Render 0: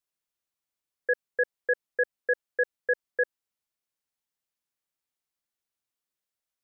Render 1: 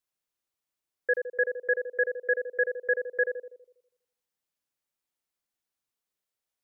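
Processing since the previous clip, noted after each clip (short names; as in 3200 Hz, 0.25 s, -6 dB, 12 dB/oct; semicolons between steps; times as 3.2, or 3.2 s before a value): narrowing echo 81 ms, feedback 50%, band-pass 450 Hz, level -4 dB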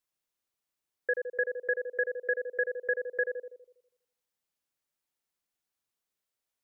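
compressor 2:1, threshold -28 dBFS, peak gain reduction 4.5 dB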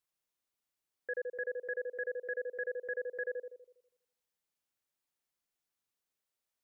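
limiter -27 dBFS, peak gain reduction 9 dB; gain -2 dB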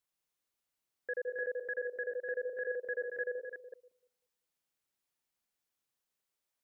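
reverse delay 0.178 s, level -6 dB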